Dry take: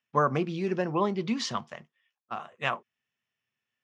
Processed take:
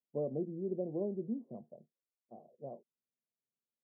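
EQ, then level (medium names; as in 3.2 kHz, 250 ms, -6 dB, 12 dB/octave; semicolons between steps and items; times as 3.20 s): high-pass 180 Hz 12 dB/octave; steep low-pass 640 Hz 48 dB/octave; -7.0 dB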